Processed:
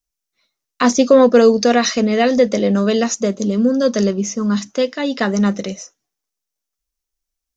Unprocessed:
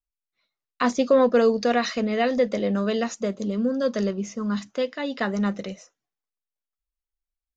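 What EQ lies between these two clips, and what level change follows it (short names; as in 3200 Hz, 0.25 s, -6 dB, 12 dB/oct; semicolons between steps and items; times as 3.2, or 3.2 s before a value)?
bell 290 Hz +4.5 dB 1.9 oct; high shelf 3800 Hz +6 dB; bell 5900 Hz +7.5 dB 0.42 oct; +5.0 dB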